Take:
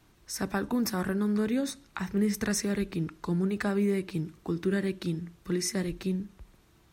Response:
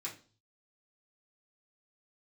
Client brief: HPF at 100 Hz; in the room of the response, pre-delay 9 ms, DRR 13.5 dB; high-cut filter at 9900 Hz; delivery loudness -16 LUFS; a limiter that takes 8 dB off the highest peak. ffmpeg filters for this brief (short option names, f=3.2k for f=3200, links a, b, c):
-filter_complex "[0:a]highpass=100,lowpass=9.9k,alimiter=level_in=1.5dB:limit=-24dB:level=0:latency=1,volume=-1.5dB,asplit=2[a][b];[1:a]atrim=start_sample=2205,adelay=9[c];[b][c]afir=irnorm=-1:irlink=0,volume=-13dB[d];[a][d]amix=inputs=2:normalize=0,volume=19dB"